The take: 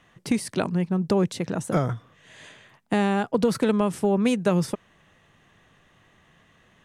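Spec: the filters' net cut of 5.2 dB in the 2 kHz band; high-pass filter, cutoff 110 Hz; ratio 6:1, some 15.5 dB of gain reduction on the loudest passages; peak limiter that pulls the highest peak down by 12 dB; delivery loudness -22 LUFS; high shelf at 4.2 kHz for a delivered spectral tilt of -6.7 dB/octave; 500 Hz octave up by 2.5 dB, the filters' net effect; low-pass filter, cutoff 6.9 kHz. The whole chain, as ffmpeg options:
-af "highpass=110,lowpass=6900,equalizer=f=500:t=o:g=3.5,equalizer=f=2000:t=o:g=-5.5,highshelf=f=4200:g=-8,acompressor=threshold=0.0224:ratio=6,volume=11.2,alimiter=limit=0.282:level=0:latency=1"

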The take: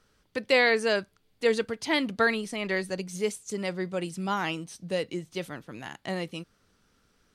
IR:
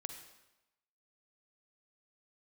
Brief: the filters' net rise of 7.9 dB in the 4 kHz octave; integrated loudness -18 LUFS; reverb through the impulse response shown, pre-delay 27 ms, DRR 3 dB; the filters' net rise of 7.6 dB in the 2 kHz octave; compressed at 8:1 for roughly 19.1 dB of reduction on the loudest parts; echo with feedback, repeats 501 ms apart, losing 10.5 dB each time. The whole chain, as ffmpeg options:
-filter_complex "[0:a]equalizer=f=2000:t=o:g=7,equalizer=f=4000:t=o:g=7.5,acompressor=threshold=0.0251:ratio=8,aecho=1:1:501|1002|1503:0.299|0.0896|0.0269,asplit=2[s0][s1];[1:a]atrim=start_sample=2205,adelay=27[s2];[s1][s2]afir=irnorm=-1:irlink=0,volume=0.944[s3];[s0][s3]amix=inputs=2:normalize=0,volume=6.31"

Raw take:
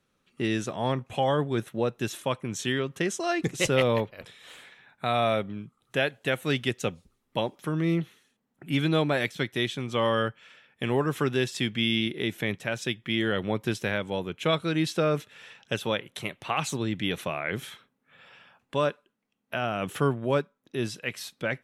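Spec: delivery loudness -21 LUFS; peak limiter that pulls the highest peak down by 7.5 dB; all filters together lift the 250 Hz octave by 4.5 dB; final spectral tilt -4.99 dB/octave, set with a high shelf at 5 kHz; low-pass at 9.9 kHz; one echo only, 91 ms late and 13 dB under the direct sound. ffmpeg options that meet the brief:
-af "lowpass=9900,equalizer=f=250:t=o:g=6,highshelf=f=5000:g=-4,alimiter=limit=0.15:level=0:latency=1,aecho=1:1:91:0.224,volume=2.51"

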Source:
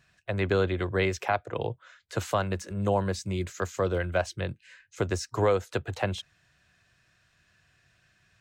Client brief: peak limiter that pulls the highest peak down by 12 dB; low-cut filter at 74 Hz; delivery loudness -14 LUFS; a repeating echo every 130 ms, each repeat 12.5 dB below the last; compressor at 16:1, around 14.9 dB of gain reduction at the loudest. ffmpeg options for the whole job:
-af "highpass=74,acompressor=threshold=0.0178:ratio=16,alimiter=level_in=2.37:limit=0.0631:level=0:latency=1,volume=0.422,aecho=1:1:130|260|390:0.237|0.0569|0.0137,volume=28.2"

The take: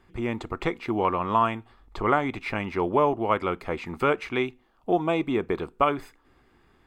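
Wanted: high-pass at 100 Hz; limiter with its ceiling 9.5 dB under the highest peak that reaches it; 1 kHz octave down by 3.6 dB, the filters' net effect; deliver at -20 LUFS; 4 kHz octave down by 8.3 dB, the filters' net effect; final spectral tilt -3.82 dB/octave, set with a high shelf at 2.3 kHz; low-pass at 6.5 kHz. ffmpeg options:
-af "highpass=100,lowpass=6500,equalizer=f=1000:t=o:g=-3,highshelf=f=2300:g=-5.5,equalizer=f=4000:t=o:g=-6,volume=3.76,alimiter=limit=0.473:level=0:latency=1"

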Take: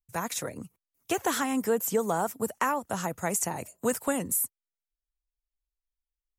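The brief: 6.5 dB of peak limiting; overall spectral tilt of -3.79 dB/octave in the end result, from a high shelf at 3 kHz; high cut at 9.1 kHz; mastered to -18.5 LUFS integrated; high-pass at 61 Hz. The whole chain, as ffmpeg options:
-af "highpass=61,lowpass=9100,highshelf=f=3000:g=3,volume=4.73,alimiter=limit=0.447:level=0:latency=1"

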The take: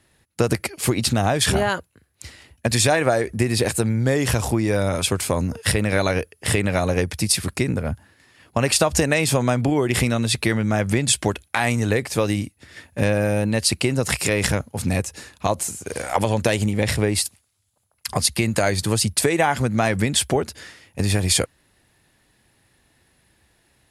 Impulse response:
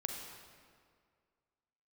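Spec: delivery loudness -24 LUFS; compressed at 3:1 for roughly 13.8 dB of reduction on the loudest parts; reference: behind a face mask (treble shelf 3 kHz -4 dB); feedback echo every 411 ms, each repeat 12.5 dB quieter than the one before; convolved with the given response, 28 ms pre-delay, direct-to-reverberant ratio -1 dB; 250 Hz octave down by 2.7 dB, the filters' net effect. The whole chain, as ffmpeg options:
-filter_complex "[0:a]equalizer=f=250:t=o:g=-3.5,acompressor=threshold=0.0178:ratio=3,aecho=1:1:411|822|1233:0.237|0.0569|0.0137,asplit=2[s0][s1];[1:a]atrim=start_sample=2205,adelay=28[s2];[s1][s2]afir=irnorm=-1:irlink=0,volume=1.06[s3];[s0][s3]amix=inputs=2:normalize=0,highshelf=f=3000:g=-4,volume=2.51"

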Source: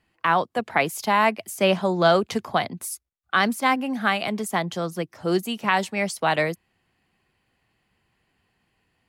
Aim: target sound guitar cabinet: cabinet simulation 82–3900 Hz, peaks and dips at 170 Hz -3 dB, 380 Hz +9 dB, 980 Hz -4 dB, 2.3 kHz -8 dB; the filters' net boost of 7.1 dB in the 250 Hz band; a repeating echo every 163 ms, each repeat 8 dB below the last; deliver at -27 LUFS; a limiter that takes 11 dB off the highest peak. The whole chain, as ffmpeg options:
-af "equalizer=f=250:t=o:g=7.5,alimiter=limit=0.178:level=0:latency=1,highpass=82,equalizer=f=170:t=q:w=4:g=-3,equalizer=f=380:t=q:w=4:g=9,equalizer=f=980:t=q:w=4:g=-4,equalizer=f=2300:t=q:w=4:g=-8,lowpass=f=3900:w=0.5412,lowpass=f=3900:w=1.3066,aecho=1:1:163|326|489|652|815:0.398|0.159|0.0637|0.0255|0.0102,volume=0.668"

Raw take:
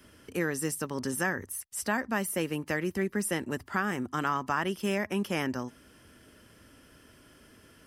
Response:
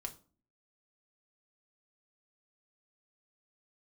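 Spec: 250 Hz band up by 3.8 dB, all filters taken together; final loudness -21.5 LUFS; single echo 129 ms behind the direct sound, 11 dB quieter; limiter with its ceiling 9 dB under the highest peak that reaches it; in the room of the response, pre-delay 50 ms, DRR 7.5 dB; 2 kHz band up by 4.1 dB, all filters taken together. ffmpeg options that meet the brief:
-filter_complex "[0:a]equalizer=f=250:t=o:g=5,equalizer=f=2000:t=o:g=5,alimiter=limit=0.0891:level=0:latency=1,aecho=1:1:129:0.282,asplit=2[s0][s1];[1:a]atrim=start_sample=2205,adelay=50[s2];[s1][s2]afir=irnorm=-1:irlink=0,volume=0.562[s3];[s0][s3]amix=inputs=2:normalize=0,volume=2.99"

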